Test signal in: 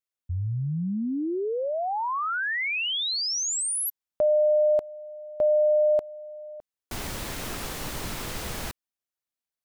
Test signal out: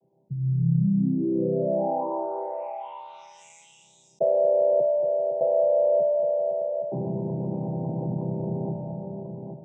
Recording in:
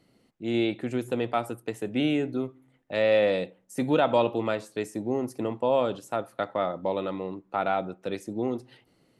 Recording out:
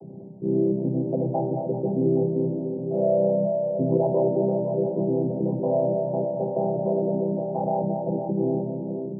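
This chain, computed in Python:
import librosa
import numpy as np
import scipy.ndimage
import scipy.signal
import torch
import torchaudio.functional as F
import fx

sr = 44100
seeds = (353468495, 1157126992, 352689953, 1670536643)

y = fx.chord_vocoder(x, sr, chord='major triad', root=48)
y = scipy.signal.sosfilt(scipy.signal.cheby2(6, 40, 1200.0, 'lowpass', fs=sr, output='sos'), y)
y = fx.echo_multitap(y, sr, ms=(192, 224, 389, 508, 819), db=(-18.0, -11.0, -17.0, -14.5, -15.5))
y = fx.rev_schroeder(y, sr, rt60_s=1.1, comb_ms=29, drr_db=12.0)
y = fx.env_flatten(y, sr, amount_pct=50)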